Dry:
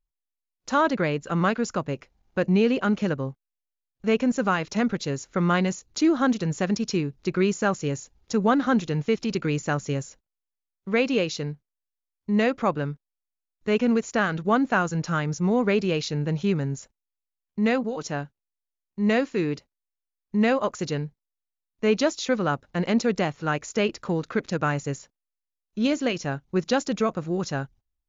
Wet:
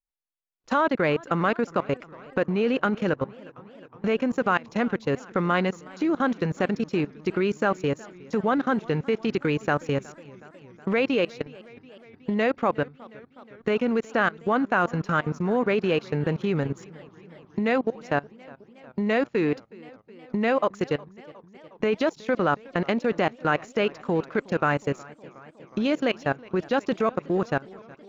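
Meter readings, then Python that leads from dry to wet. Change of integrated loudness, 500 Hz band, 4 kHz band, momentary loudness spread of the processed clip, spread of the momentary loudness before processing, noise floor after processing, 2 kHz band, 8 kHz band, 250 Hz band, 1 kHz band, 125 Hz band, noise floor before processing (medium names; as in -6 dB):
-0.5 dB, +1.0 dB, -3.0 dB, 10 LU, 11 LU, -56 dBFS, +1.0 dB, no reading, -2.0 dB, +1.0 dB, -3.0 dB, under -85 dBFS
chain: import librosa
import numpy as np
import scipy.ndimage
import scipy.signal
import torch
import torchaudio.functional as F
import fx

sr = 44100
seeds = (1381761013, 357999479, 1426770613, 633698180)

p1 = fx.recorder_agc(x, sr, target_db=-16.0, rise_db_per_s=11.0, max_gain_db=30)
p2 = np.sign(p1) * np.maximum(np.abs(p1) - 10.0 ** (-41.0 / 20.0), 0.0)
p3 = p1 + F.gain(torch.from_numpy(p2), -6.0).numpy()
p4 = fx.level_steps(p3, sr, step_db=23)
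p5 = fx.bass_treble(p4, sr, bass_db=-7, treble_db=-10)
p6 = fx.echo_warbled(p5, sr, ms=365, feedback_pct=73, rate_hz=2.8, cents=101, wet_db=-22.5)
y = F.gain(torch.from_numpy(p6), 3.0).numpy()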